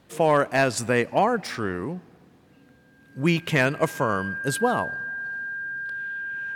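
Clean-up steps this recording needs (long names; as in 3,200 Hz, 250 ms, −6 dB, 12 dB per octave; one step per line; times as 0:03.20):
clipped peaks rebuilt −10.5 dBFS
notch filter 1,600 Hz, Q 30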